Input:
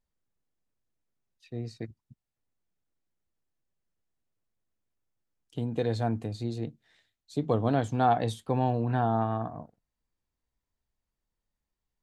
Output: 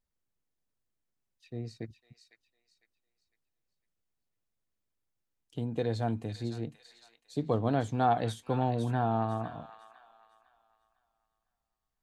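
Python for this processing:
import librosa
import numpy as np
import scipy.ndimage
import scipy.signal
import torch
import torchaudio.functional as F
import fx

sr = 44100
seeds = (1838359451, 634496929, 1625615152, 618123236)

y = fx.echo_wet_highpass(x, sr, ms=503, feedback_pct=32, hz=1700.0, wet_db=-6.5)
y = F.gain(torch.from_numpy(y), -2.5).numpy()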